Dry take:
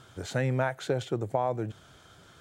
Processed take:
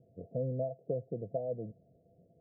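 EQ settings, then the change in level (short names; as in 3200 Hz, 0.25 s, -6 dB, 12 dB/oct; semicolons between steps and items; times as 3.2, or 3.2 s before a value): rippled Chebyshev low-pass 700 Hz, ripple 9 dB; low shelf 140 Hz -8 dB; dynamic EQ 360 Hz, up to -4 dB, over -55 dBFS, Q 6.1; 0.0 dB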